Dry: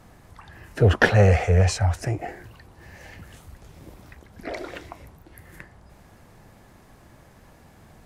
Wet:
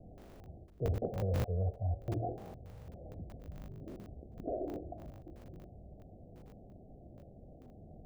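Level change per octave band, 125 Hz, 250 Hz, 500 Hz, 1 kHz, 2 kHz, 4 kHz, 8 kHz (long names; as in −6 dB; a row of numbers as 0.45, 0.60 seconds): −15.0 dB, −12.0 dB, −14.5 dB, −15.5 dB, −32.0 dB, −24.0 dB, below −20 dB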